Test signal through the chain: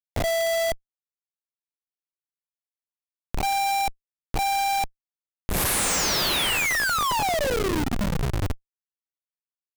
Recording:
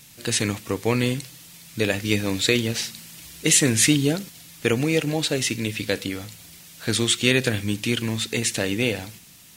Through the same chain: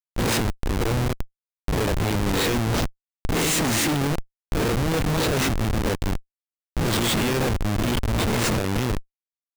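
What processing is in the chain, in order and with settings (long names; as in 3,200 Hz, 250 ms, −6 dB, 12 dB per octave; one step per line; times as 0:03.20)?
peak hold with a rise ahead of every peak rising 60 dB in 0.76 s
background noise brown −44 dBFS
comparator with hysteresis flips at −19.5 dBFS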